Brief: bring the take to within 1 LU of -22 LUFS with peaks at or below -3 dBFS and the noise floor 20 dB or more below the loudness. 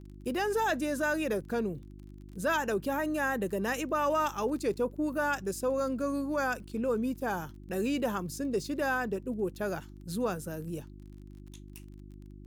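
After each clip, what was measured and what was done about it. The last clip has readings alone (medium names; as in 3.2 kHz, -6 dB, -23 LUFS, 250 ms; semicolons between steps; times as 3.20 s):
tick rate 18 per s; hum 50 Hz; highest harmonic 350 Hz; hum level -46 dBFS; loudness -32.0 LUFS; peak level -19.0 dBFS; loudness target -22.0 LUFS
-> de-click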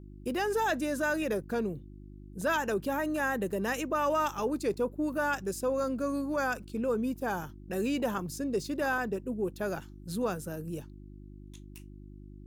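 tick rate 0.56 per s; hum 50 Hz; highest harmonic 350 Hz; hum level -47 dBFS
-> de-hum 50 Hz, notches 7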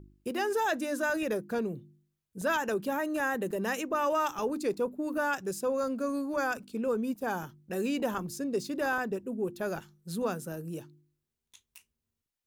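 hum not found; loudness -32.0 LUFS; peak level -19.0 dBFS; loudness target -22.0 LUFS
-> trim +10 dB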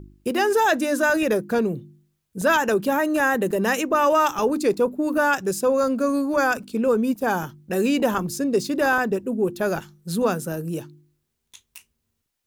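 loudness -22.0 LUFS; peak level -9.0 dBFS; noise floor -77 dBFS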